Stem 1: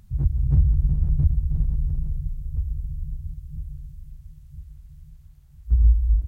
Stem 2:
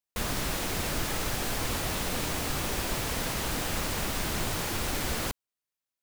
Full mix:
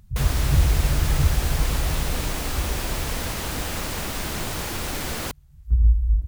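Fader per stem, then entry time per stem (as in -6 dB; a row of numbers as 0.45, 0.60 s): -0.5, +2.0 dB; 0.00, 0.00 s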